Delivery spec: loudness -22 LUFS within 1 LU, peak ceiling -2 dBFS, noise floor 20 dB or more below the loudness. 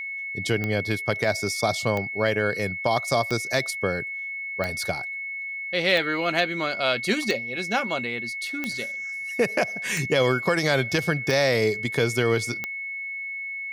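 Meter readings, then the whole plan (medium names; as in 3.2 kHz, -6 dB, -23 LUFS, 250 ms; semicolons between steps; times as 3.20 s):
clicks found 10; steady tone 2.2 kHz; tone level -30 dBFS; loudness -25.0 LUFS; peak level -8.5 dBFS; loudness target -22.0 LUFS
-> de-click; band-stop 2.2 kHz, Q 30; trim +3 dB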